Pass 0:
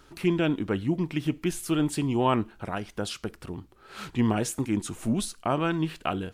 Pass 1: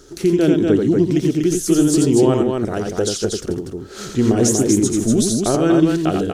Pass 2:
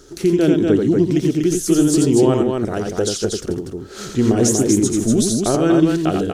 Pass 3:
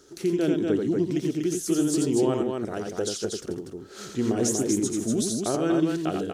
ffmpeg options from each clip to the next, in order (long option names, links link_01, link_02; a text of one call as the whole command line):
ffmpeg -i in.wav -filter_complex "[0:a]equalizer=frequency=400:width_type=o:width=0.67:gain=10,equalizer=frequency=1000:width_type=o:width=0.67:gain=-10,equalizer=frequency=2500:width_type=o:width=0.67:gain=-9,equalizer=frequency=6300:width_type=o:width=0.67:gain=11,alimiter=limit=-15dB:level=0:latency=1:release=237,asplit=2[link_01][link_02];[link_02]aecho=0:1:87|241:0.631|0.631[link_03];[link_01][link_03]amix=inputs=2:normalize=0,volume=7.5dB" out.wav
ffmpeg -i in.wav -af anull out.wav
ffmpeg -i in.wav -af "highpass=frequency=160:poles=1,volume=-8dB" out.wav